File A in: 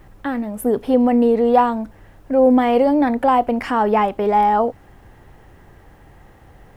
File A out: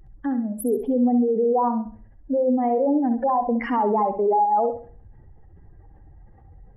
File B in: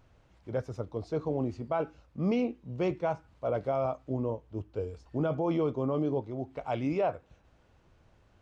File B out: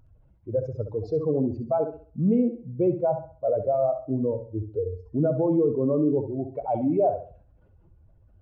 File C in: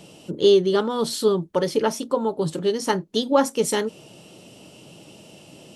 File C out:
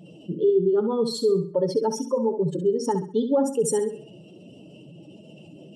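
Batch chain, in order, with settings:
expanding power law on the bin magnitudes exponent 2.1
dynamic equaliser 3,900 Hz, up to −4 dB, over −44 dBFS, Q 1.2
brickwall limiter −14 dBFS
mains-hum notches 60/120 Hz
flutter between parallel walls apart 11.3 metres, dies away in 0.42 s
normalise the peak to −12 dBFS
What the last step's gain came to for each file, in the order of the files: −1.5, +6.5, 0.0 decibels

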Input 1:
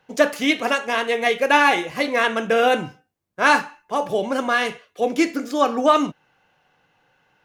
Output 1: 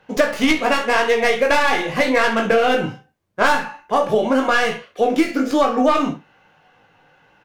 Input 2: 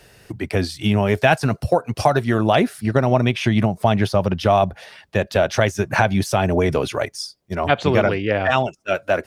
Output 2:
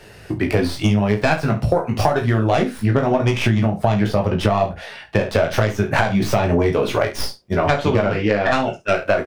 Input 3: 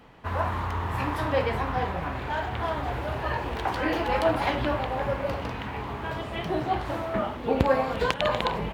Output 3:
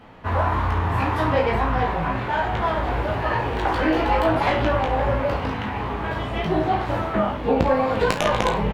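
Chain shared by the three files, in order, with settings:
stylus tracing distortion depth 0.13 ms
high-shelf EQ 4,600 Hz −8 dB
double-tracking delay 35 ms −10.5 dB
on a send: ambience of single reflections 19 ms −4.5 dB, 68 ms −14.5 dB
on the sum: flanger 0.88 Hz, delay 8.8 ms, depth 7.6 ms, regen −49%
downward compressor 6 to 1, threshold −24 dBFS
normalise the peak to −2 dBFS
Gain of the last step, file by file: +11.5, +10.5, +9.5 decibels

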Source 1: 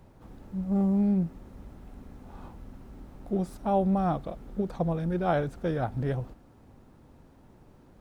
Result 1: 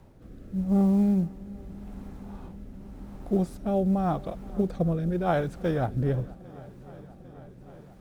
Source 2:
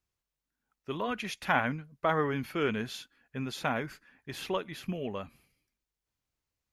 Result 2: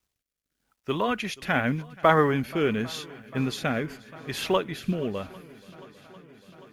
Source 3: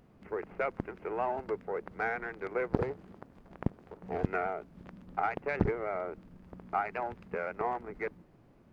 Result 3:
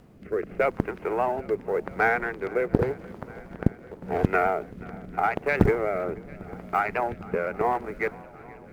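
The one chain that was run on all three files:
log-companded quantiser 8 bits
rotating-speaker cabinet horn 0.85 Hz
feedback echo with a long and a short gap by turns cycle 799 ms, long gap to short 1.5 to 1, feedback 68%, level −22.5 dB
loudness normalisation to −27 LKFS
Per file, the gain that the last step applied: +4.0, +9.0, +11.0 decibels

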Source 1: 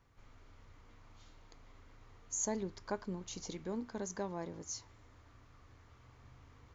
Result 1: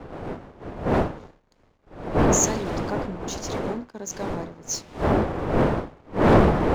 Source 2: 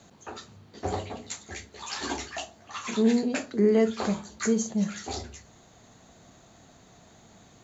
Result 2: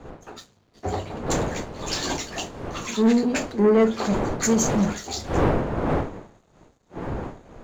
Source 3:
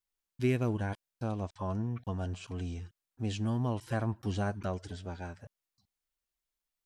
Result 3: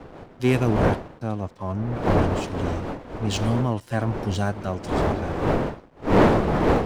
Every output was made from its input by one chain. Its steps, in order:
wind on the microphone 570 Hz −33 dBFS
leveller curve on the samples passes 2
multiband upward and downward expander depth 70%
loudness normalisation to −24 LKFS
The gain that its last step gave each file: +1.5, −2.5, +1.5 decibels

